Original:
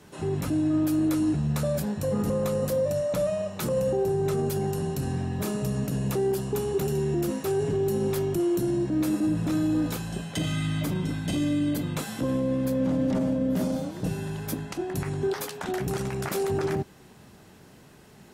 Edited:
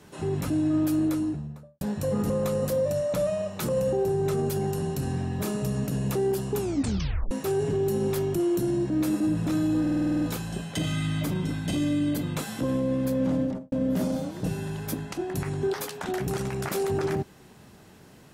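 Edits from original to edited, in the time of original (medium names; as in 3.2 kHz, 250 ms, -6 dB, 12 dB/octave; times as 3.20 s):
0.90–1.81 s: studio fade out
6.58 s: tape stop 0.73 s
9.81 s: stutter 0.05 s, 9 plays
12.95–13.32 s: studio fade out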